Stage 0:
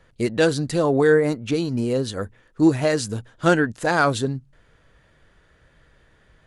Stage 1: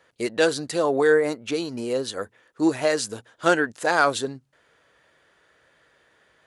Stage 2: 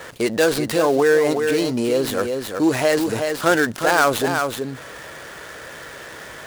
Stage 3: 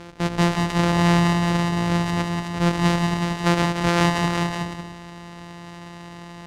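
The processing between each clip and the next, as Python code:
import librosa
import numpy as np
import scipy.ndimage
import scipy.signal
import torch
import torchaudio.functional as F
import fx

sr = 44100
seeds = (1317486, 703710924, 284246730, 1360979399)

y1 = scipy.signal.sosfilt(scipy.signal.butter(2, 78.0, 'highpass', fs=sr, output='sos'), x)
y1 = fx.bass_treble(y1, sr, bass_db=-15, treble_db=1)
y2 = fx.dead_time(y1, sr, dead_ms=0.1)
y2 = y2 + 10.0 ** (-10.5 / 20.0) * np.pad(y2, (int(372 * sr / 1000.0), 0))[:len(y2)]
y2 = fx.env_flatten(y2, sr, amount_pct=50)
y2 = y2 * librosa.db_to_amplitude(1.5)
y3 = np.r_[np.sort(y2[:len(y2) // 256 * 256].reshape(-1, 256), axis=1).ravel(), y2[len(y2) // 256 * 256:]]
y3 = fx.air_absorb(y3, sr, metres=67.0)
y3 = y3 + 10.0 ** (-5.5 / 20.0) * np.pad(y3, (int(181 * sr / 1000.0), 0))[:len(y3)]
y3 = y3 * librosa.db_to_amplitude(-2.5)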